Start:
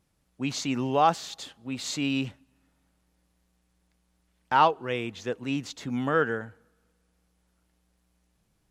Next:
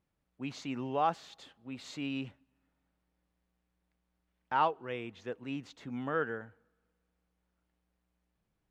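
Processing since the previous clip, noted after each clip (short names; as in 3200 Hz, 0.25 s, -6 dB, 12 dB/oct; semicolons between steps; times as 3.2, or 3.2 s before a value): tone controls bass -2 dB, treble -11 dB; gain -8 dB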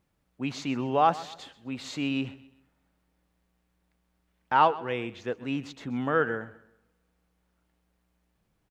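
feedback echo 0.129 s, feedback 35%, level -18 dB; gain +7.5 dB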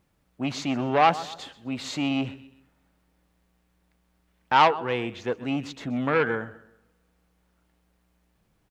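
core saturation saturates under 1500 Hz; gain +5 dB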